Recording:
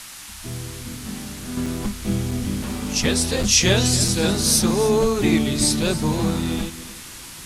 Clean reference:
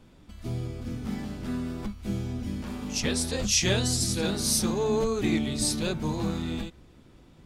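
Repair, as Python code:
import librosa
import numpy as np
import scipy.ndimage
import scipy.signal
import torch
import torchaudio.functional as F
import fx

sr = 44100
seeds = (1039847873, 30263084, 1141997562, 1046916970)

y = fx.fix_interpolate(x, sr, at_s=(1.66, 2.31, 3.43, 4.08), length_ms=3.6)
y = fx.noise_reduce(y, sr, print_start_s=6.94, print_end_s=7.44, reduce_db=15.0)
y = fx.fix_echo_inverse(y, sr, delay_ms=284, level_db=-15.0)
y = fx.fix_level(y, sr, at_s=1.57, step_db=-7.5)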